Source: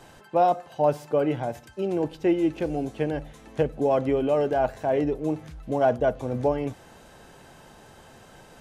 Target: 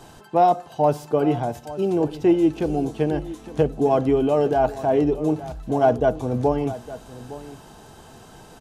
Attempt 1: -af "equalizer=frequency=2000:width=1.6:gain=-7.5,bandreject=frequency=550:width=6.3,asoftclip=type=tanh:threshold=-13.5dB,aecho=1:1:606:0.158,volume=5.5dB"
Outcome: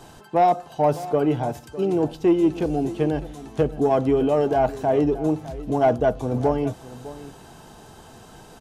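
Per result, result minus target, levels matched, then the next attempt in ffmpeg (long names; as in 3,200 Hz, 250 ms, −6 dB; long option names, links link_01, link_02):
soft clipping: distortion +13 dB; echo 255 ms early
-af "equalizer=frequency=2000:width=1.6:gain=-7.5,bandreject=frequency=550:width=6.3,asoftclip=type=tanh:threshold=-6dB,aecho=1:1:606:0.158,volume=5.5dB"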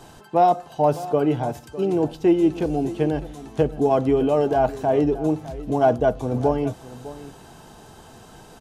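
echo 255 ms early
-af "equalizer=frequency=2000:width=1.6:gain=-7.5,bandreject=frequency=550:width=6.3,asoftclip=type=tanh:threshold=-6dB,aecho=1:1:861:0.158,volume=5.5dB"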